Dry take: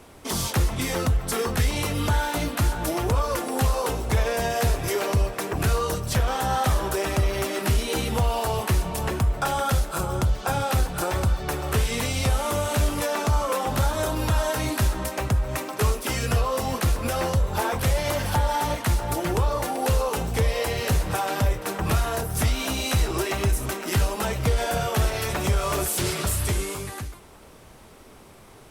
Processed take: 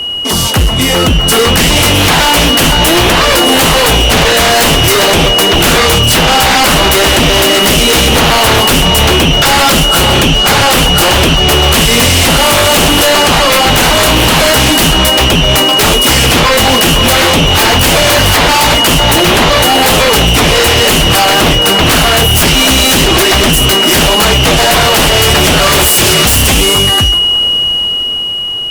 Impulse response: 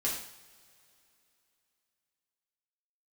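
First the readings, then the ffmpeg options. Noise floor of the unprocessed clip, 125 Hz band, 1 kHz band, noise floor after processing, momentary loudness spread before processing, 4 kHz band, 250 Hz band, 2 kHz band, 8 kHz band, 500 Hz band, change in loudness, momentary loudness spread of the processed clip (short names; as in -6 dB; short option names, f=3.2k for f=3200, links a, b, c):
-48 dBFS, +11.5 dB, +17.0 dB, -11 dBFS, 2 LU, +28.5 dB, +18.0 dB, +21.5 dB, +20.5 dB, +16.5 dB, +18.5 dB, 1 LU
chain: -filter_complex "[0:a]aeval=exprs='val(0)+0.0282*sin(2*PI*2900*n/s)':c=same,dynaudnorm=f=230:g=11:m=9.5dB,aeval=exprs='0.708*sin(PI/2*4.47*val(0)/0.708)':c=same,asplit=2[a][b];[1:a]atrim=start_sample=2205[c];[b][c]afir=irnorm=-1:irlink=0,volume=-20.5dB[d];[a][d]amix=inputs=2:normalize=0,volume=-2dB"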